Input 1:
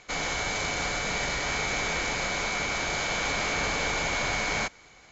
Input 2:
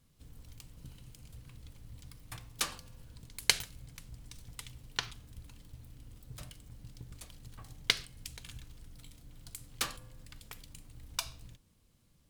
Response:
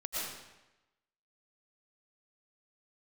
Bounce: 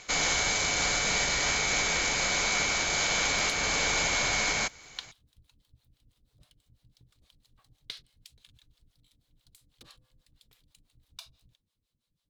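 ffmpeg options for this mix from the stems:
-filter_complex "[0:a]highshelf=frequency=3400:gain=10.5,volume=0dB[link_01];[1:a]equalizer=frequency=3800:width_type=o:width=0.66:gain=10.5,acrossover=split=490[link_02][link_03];[link_02]aeval=exprs='val(0)*(1-1/2+1/2*cos(2*PI*6.1*n/s))':channel_layout=same[link_04];[link_03]aeval=exprs='val(0)*(1-1/2-1/2*cos(2*PI*6.1*n/s))':channel_layout=same[link_05];[link_04][link_05]amix=inputs=2:normalize=0,volume=-10.5dB[link_06];[link_01][link_06]amix=inputs=2:normalize=0,alimiter=limit=-16.5dB:level=0:latency=1:release=489"

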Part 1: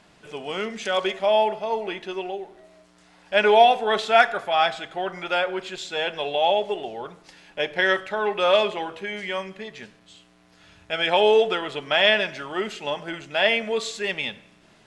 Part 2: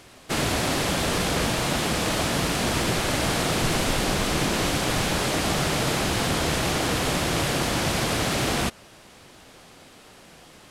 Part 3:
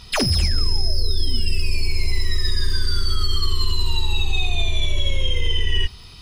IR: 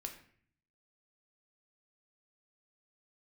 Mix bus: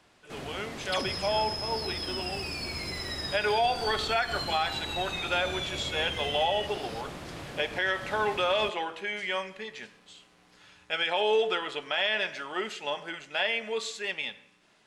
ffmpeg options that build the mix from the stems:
-filter_complex "[0:a]lowshelf=frequency=310:gain=-11,bandreject=frequency=660:width=19,dynaudnorm=framelen=880:gausssize=5:maxgain=7.5dB,volume=-8.5dB,asplit=2[link_01][link_02];[link_02]volume=-5dB[link_03];[1:a]highshelf=frequency=4200:gain=-9,volume=-16dB[link_04];[2:a]acrossover=split=8500[link_05][link_06];[link_06]acompressor=threshold=-47dB:ratio=4:attack=1:release=60[link_07];[link_05][link_07]amix=inputs=2:normalize=0,highpass=150,acompressor=threshold=-30dB:ratio=6,adelay=800,volume=-3dB[link_08];[3:a]atrim=start_sample=2205[link_09];[link_03][link_09]afir=irnorm=-1:irlink=0[link_10];[link_01][link_04][link_08][link_10]amix=inputs=4:normalize=0,alimiter=limit=-17dB:level=0:latency=1:release=126"

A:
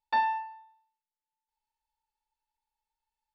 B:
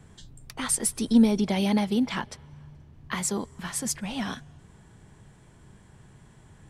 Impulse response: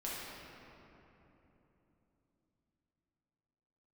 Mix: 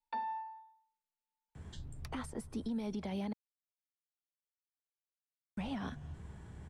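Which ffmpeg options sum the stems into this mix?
-filter_complex "[0:a]aecho=1:1:4.3:0.86,volume=-5.5dB[link_01];[1:a]equalizer=frequency=74:width=4.4:gain=12,alimiter=limit=-19dB:level=0:latency=1:release=454,adelay=1550,volume=0dB,asplit=3[link_02][link_03][link_04];[link_02]atrim=end=3.33,asetpts=PTS-STARTPTS,afade=type=out:start_time=3.326:duration=0.004:curve=hsin[link_05];[link_03]atrim=start=3.33:end=5.57,asetpts=PTS-STARTPTS,volume=0[link_06];[link_04]atrim=start=5.57,asetpts=PTS-STARTPTS,afade=type=in:duration=0.004:curve=hsin[link_07];[link_05][link_06][link_07]concat=n=3:v=0:a=1[link_08];[link_01][link_08]amix=inputs=2:normalize=0,acrossover=split=280|590|1300[link_09][link_10][link_11][link_12];[link_09]acompressor=threshold=-34dB:ratio=4[link_13];[link_10]acompressor=threshold=-40dB:ratio=4[link_14];[link_11]acompressor=threshold=-42dB:ratio=4[link_15];[link_12]acompressor=threshold=-45dB:ratio=4[link_16];[link_13][link_14][link_15][link_16]amix=inputs=4:normalize=0,highshelf=frequency=3800:gain=-8,alimiter=level_in=6.5dB:limit=-24dB:level=0:latency=1:release=303,volume=-6.5dB"

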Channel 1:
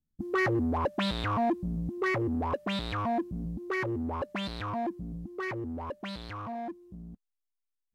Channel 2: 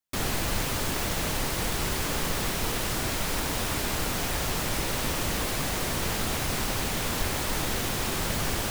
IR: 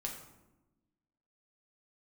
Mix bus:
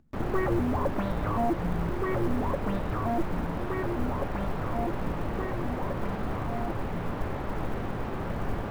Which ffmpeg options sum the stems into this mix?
-filter_complex "[0:a]volume=0dB[link_01];[1:a]acrusher=bits=6:mix=0:aa=0.000001,volume=-4dB,asplit=2[link_02][link_03];[link_03]volume=-6dB[link_04];[2:a]atrim=start_sample=2205[link_05];[link_04][link_05]afir=irnorm=-1:irlink=0[link_06];[link_01][link_02][link_06]amix=inputs=3:normalize=0,lowpass=1200,acompressor=mode=upward:threshold=-47dB:ratio=2.5,acrusher=bits=8:mode=log:mix=0:aa=0.000001"

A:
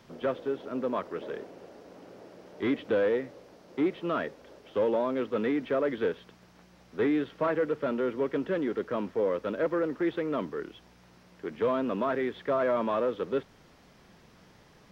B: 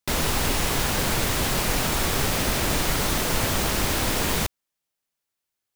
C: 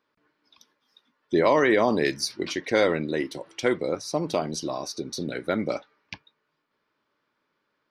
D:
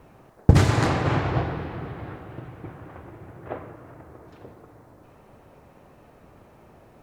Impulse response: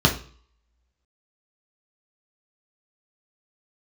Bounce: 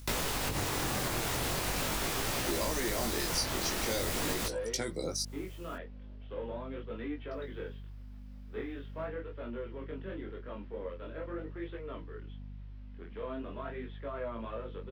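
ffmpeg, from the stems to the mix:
-filter_complex "[0:a]lowpass=frequency=3300:width_type=q:width=1.6,flanger=delay=20:depth=6:speed=0.89,adelay=1550,volume=-7dB[link_01];[1:a]volume=1.5dB[link_02];[2:a]aexciter=amount=2.7:drive=9.8:freq=4300,adelay=1150,volume=-2dB,asplit=3[link_03][link_04][link_05];[link_03]atrim=end=5.23,asetpts=PTS-STARTPTS,afade=type=out:start_time=5.226:duration=0.004:curve=hsin[link_06];[link_04]atrim=start=5.23:end=7.31,asetpts=PTS-STARTPTS,volume=0[link_07];[link_05]atrim=start=7.31,asetpts=PTS-STARTPTS,afade=type=in:duration=0.004:curve=hsin[link_08];[link_06][link_07][link_08]concat=n=3:v=0:a=1[link_09];[3:a]aeval=exprs='val(0)*gte(abs(val(0)),0.0133)':channel_layout=same,volume=-2dB[link_10];[link_02][link_10]amix=inputs=2:normalize=0,acompressor=mode=upward:threshold=-36dB:ratio=2.5,alimiter=limit=-13dB:level=0:latency=1:release=251,volume=0dB[link_11];[link_01][link_09][link_11]amix=inputs=3:normalize=0,acrossover=split=250|5000[link_12][link_13][link_14];[link_12]acompressor=threshold=-36dB:ratio=4[link_15];[link_13]acompressor=threshold=-31dB:ratio=4[link_16];[link_14]acompressor=threshold=-34dB:ratio=4[link_17];[link_15][link_16][link_17]amix=inputs=3:normalize=0,aeval=exprs='val(0)+0.00708*(sin(2*PI*50*n/s)+sin(2*PI*2*50*n/s)/2+sin(2*PI*3*50*n/s)/3+sin(2*PI*4*50*n/s)/4+sin(2*PI*5*50*n/s)/5)':channel_layout=same,flanger=delay=17.5:depth=6.5:speed=0.42"

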